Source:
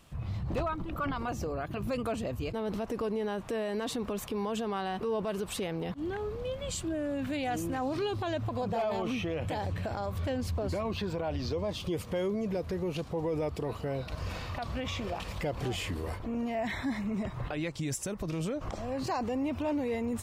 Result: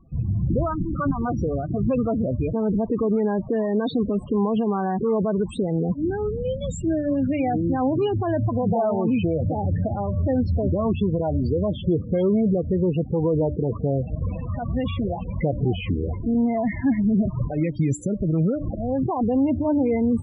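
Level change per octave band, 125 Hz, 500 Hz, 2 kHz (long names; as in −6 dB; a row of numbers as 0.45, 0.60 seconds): +12.5, +9.0, +0.5 decibels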